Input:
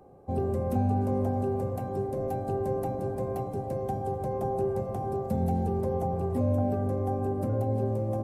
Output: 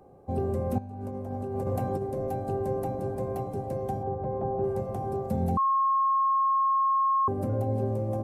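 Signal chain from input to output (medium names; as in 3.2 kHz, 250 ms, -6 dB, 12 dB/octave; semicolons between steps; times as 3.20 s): 0.78–2.03 s: compressor with a negative ratio -31 dBFS, ratio -0.5; 4.03–4.64 s: low-pass 1.5 kHz 12 dB/octave; 5.57–7.28 s: bleep 1.08 kHz -21 dBFS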